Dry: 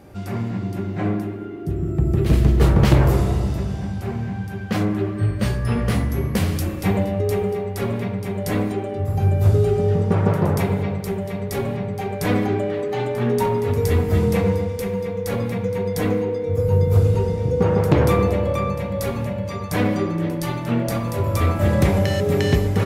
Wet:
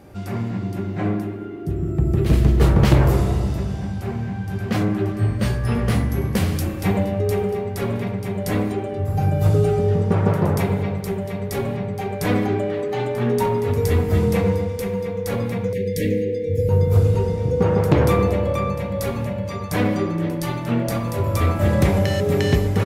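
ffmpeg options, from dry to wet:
ffmpeg -i in.wav -filter_complex "[0:a]asplit=2[link_01][link_02];[link_02]afade=type=in:start_time=3.89:duration=0.01,afade=type=out:start_time=4.54:duration=0.01,aecho=0:1:580|1160|1740|2320|2900|3480|4060|4640|5220|5800|6380|6960:0.595662|0.506313|0.430366|0.365811|0.310939|0.264298|0.224654|0.190956|0.162312|0.137965|0.117271|0.09968[link_03];[link_01][link_03]amix=inputs=2:normalize=0,asettb=1/sr,asplit=3[link_04][link_05][link_06];[link_04]atrim=end=9.174[link_07];[link_05]atrim=start=9.17:end=9.79,asetpts=PTS-STARTPTS,afade=type=in:duration=0.004:curve=qsin,afade=type=out:start_time=0.616:duration=0.004:curve=qsin,aecho=1:1:6.5:0.73,atrim=end_sample=27342[link_08];[link_06]atrim=start=9.786[link_09];[link_07][link_08]acrossfade=duration=0.004:curve1=hsin:curve2=qsin[link_10];[link_10][link_09]acrossfade=duration=0.004:curve1=qsin:curve2=hsin,asettb=1/sr,asplit=3[link_11][link_12][link_13];[link_11]atrim=end=15.734[link_14];[link_12]atrim=start=15.73:end=16.69,asetpts=PTS-STARTPTS,afade=type=in:duration=0.004:curve=qsin,afade=type=out:start_time=0.956:duration=0.004:curve=qsin,asuperstop=centerf=1000:order=20:qfactor=0.91[link_15];[link_13]atrim=start=16.686[link_16];[link_14][link_15]acrossfade=duration=0.004:curve1=hsin:curve2=qsin[link_17];[link_17][link_16]acrossfade=duration=0.004:curve1=qsin:curve2=hsin" out.wav

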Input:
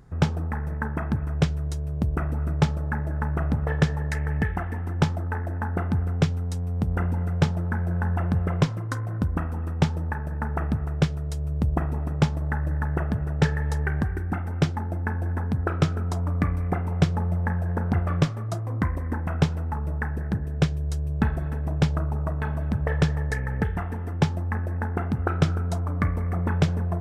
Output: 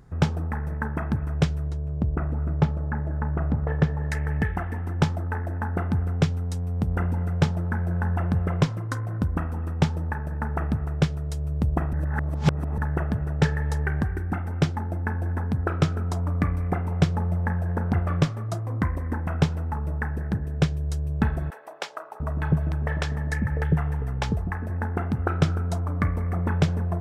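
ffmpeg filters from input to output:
ffmpeg -i in.wav -filter_complex "[0:a]asettb=1/sr,asplit=3[link_01][link_02][link_03];[link_01]atrim=end=1.694[link_04];[link_02]atrim=start=1.69:end=4.03,asetpts=PTS-STARTPTS,afade=type=in:duration=0.004:curve=qsin,afade=type=out:start_time=2.336:duration=0.004:curve=qsin,lowpass=frequency=1300:poles=1[link_05];[link_03]atrim=start=4.026[link_06];[link_04][link_05]acrossfade=duration=0.004:curve1=hsin:curve2=qsin[link_07];[link_07][link_06]acrossfade=duration=0.004:curve1=qsin:curve2=hsin,asettb=1/sr,asplit=3[link_08][link_09][link_10];[link_08]atrim=end=21.504[link_11];[link_09]atrim=start=21.5:end=24.7,asetpts=PTS-STARTPTS,afade=type=in:duration=0.004:curve=qsin,afade=type=out:start_time=3.196:duration=0.004:curve=qsin,acrossover=split=490[link_12][link_13];[link_12]adelay=700[link_14];[link_14][link_13]amix=inputs=2:normalize=0,atrim=end_sample=141120[link_15];[link_10]atrim=start=24.696[link_16];[link_11][link_15]acrossfade=duration=0.004:curve1=hsin:curve2=qsin[link_17];[link_17][link_16]acrossfade=duration=0.004:curve1=qsin:curve2=hsin,asplit=3[link_18][link_19][link_20];[link_18]atrim=end=11.932[link_21];[link_19]atrim=start=11.928:end=12.782,asetpts=PTS-STARTPTS,areverse[link_22];[link_20]atrim=start=12.778[link_23];[link_21][link_22]acrossfade=duration=0.004:curve1=hsin:curve2=hsin[link_24];[link_24][link_23]acrossfade=duration=0.004:curve1=hsin:curve2=hsin" out.wav

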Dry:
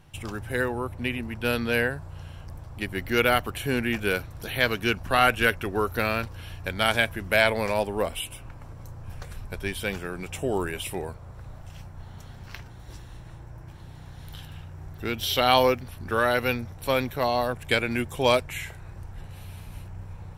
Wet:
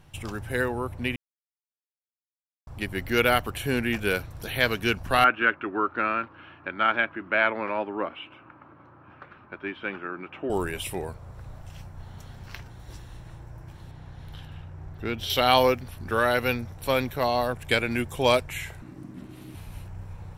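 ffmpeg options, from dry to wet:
ffmpeg -i in.wav -filter_complex "[0:a]asettb=1/sr,asplit=3[link_01][link_02][link_03];[link_01]atrim=end=5.244[link_04];[link_02]atrim=start=5.24:end=10.5,asetpts=PTS-STARTPTS,afade=type=in:duration=0.004:curve=qsin,afade=type=out:start_time=5.256:duration=0.004:curve=qsin,highpass=280,equalizer=frequency=310:width_type=q:width=4:gain=7,equalizer=frequency=470:width_type=q:width=4:gain=-8,equalizer=frequency=710:width_type=q:width=4:gain=-5,equalizer=frequency=1300:width_type=q:width=4:gain=7,equalizer=frequency=2000:width_type=q:width=4:gain=-4,lowpass=frequency=2500:width=0.5412,lowpass=frequency=2500:width=1.3066[link_05];[link_03]atrim=start=10.496[link_06];[link_04][link_05]acrossfade=duration=0.004:curve1=hsin:curve2=qsin[link_07];[link_07][link_06]acrossfade=duration=0.004:curve1=qsin:curve2=hsin,asettb=1/sr,asplit=3[link_08][link_09][link_10];[link_08]atrim=end=13.914[link_11];[link_09]atrim=start=13.91:end=15.3,asetpts=PTS-STARTPTS,afade=type=in:duration=0.004:curve=qsin,afade=type=out:start_time=1.386:duration=0.004:curve=qsin,lowpass=frequency=2800:poles=1[link_12];[link_10]atrim=start=15.296[link_13];[link_11][link_12]acrossfade=duration=0.004:curve1=hsin:curve2=qsin[link_14];[link_14][link_13]acrossfade=duration=0.004:curve1=qsin:curve2=hsin,asettb=1/sr,asplit=3[link_15][link_16][link_17];[link_15]atrim=end=18.824[link_18];[link_16]atrim=start=18.82:end=19.55,asetpts=PTS-STARTPTS,afade=type=in:duration=0.004:curve=qsin,afade=type=out:start_time=0.726:duration=0.004:curve=qsin,aeval=exprs='val(0)*sin(2*PI*220*n/s)':channel_layout=same[link_19];[link_17]atrim=start=19.546[link_20];[link_18][link_19]acrossfade=duration=0.004:curve1=hsin:curve2=qsin[link_21];[link_21][link_20]acrossfade=duration=0.004:curve1=qsin:curve2=hsin,asplit=3[link_22][link_23][link_24];[link_22]atrim=end=1.16,asetpts=PTS-STARTPTS,afade=type=out:start_time=1.156:duration=0.004:curve=hsin[link_25];[link_23]atrim=start=1.16:end=2.67,asetpts=PTS-STARTPTS,volume=0[link_26];[link_24]atrim=start=2.67,asetpts=PTS-STARTPTS,afade=type=in:duration=0.004:curve=hsin[link_27];[link_25][link_26][link_27]concat=n=3:v=0:a=1" out.wav

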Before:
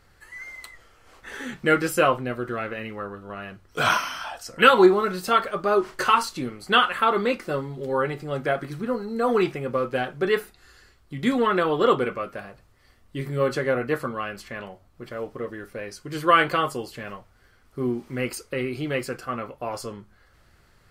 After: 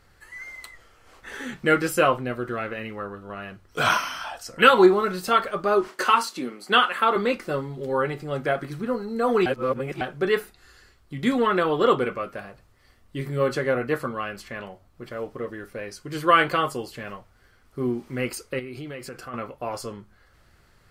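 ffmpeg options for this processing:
ffmpeg -i in.wav -filter_complex "[0:a]asettb=1/sr,asplit=3[link_01][link_02][link_03];[link_01]atrim=end=5.884[link_04];[link_02]atrim=start=5.88:end=7.16,asetpts=PTS-STARTPTS,afade=type=in:duration=0.004:curve=qsin,afade=type=out:start_time=1.276:duration=0.004:curve=qsin,highpass=frequency=200:width=0.5412,highpass=frequency=200:width=1.3066[link_05];[link_03]atrim=start=7.156[link_06];[link_04][link_05]acrossfade=duration=0.004:curve1=hsin:curve2=qsin[link_07];[link_07][link_06]acrossfade=duration=0.004:curve1=qsin:curve2=hsin,asettb=1/sr,asplit=3[link_08][link_09][link_10];[link_08]atrim=end=18.594[link_11];[link_09]atrim=start=18.59:end=19.34,asetpts=PTS-STARTPTS,afade=type=in:duration=0.004:curve=qsin,afade=type=out:start_time=0.746:duration=0.004:curve=qsin,acompressor=threshold=-34dB:ratio=4:attack=3.2:release=140:knee=1:detection=peak[link_12];[link_10]atrim=start=19.336[link_13];[link_11][link_12]acrossfade=duration=0.004:curve1=hsin:curve2=qsin[link_14];[link_14][link_13]acrossfade=duration=0.004:curve1=qsin:curve2=hsin,asplit=3[link_15][link_16][link_17];[link_15]atrim=end=9.462[link_18];[link_16]atrim=start=9.458:end=10.012,asetpts=PTS-STARTPTS,areverse[link_19];[link_17]atrim=start=10.008[link_20];[link_18][link_19]acrossfade=duration=0.004:curve1=hsin:curve2=hsin[link_21];[link_21][link_20]acrossfade=duration=0.004:curve1=hsin:curve2=hsin" out.wav

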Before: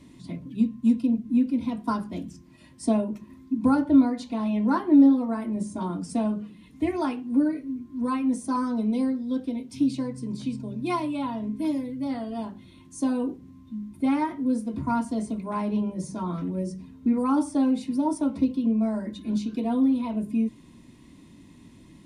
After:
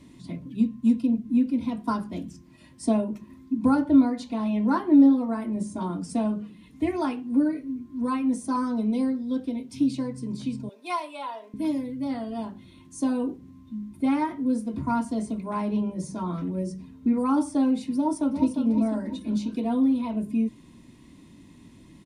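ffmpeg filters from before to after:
ffmpeg -i in.wav -filter_complex "[0:a]asettb=1/sr,asplit=3[link_01][link_02][link_03];[link_01]atrim=end=10.694[link_04];[link_02]atrim=start=10.69:end=11.54,asetpts=PTS-STARTPTS,afade=type=in:duration=0.004:curve=qsin,afade=type=out:start_time=0.846:duration=0.004:curve=qsin,highpass=frequency=490:width=0.5412,highpass=frequency=490:width=1.3066[link_05];[link_03]atrim=start=11.536[link_06];[link_04][link_05]acrossfade=duration=0.004:curve1=hsin:curve2=qsin[link_07];[link_07][link_06]acrossfade=duration=0.004:curve1=qsin:curve2=hsin,asplit=2[link_08][link_09];[link_09]afade=type=in:start_time=17.96:duration=0.01,afade=type=out:start_time=18.59:duration=0.01,aecho=0:1:350|700|1050|1400|1750:0.446684|0.201008|0.0904534|0.040704|0.0183168[link_10];[link_08][link_10]amix=inputs=2:normalize=0" out.wav

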